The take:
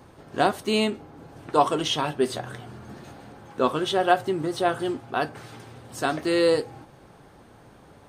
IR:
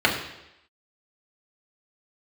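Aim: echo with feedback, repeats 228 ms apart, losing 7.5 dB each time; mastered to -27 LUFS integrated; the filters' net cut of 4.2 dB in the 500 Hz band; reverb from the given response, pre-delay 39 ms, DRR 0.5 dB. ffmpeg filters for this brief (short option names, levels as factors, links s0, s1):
-filter_complex "[0:a]equalizer=f=500:t=o:g=-5.5,aecho=1:1:228|456|684|912|1140:0.422|0.177|0.0744|0.0312|0.0131,asplit=2[s0][s1];[1:a]atrim=start_sample=2205,adelay=39[s2];[s1][s2]afir=irnorm=-1:irlink=0,volume=0.106[s3];[s0][s3]amix=inputs=2:normalize=0,volume=0.708"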